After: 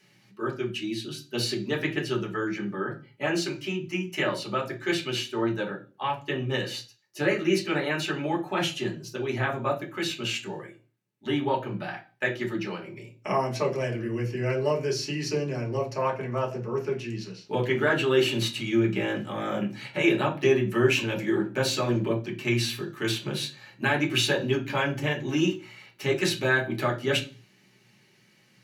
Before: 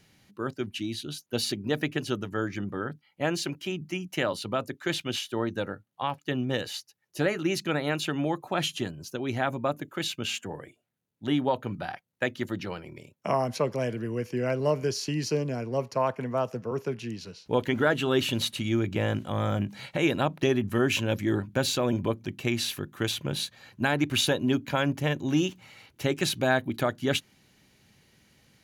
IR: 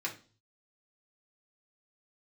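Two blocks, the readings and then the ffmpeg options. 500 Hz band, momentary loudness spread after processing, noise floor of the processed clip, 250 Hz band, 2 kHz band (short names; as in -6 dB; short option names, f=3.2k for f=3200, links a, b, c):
+1.5 dB, 10 LU, -61 dBFS, +0.5 dB, +3.5 dB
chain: -filter_complex "[1:a]atrim=start_sample=2205,asetrate=48510,aresample=44100[a];[0:a][a]afir=irnorm=-1:irlink=0"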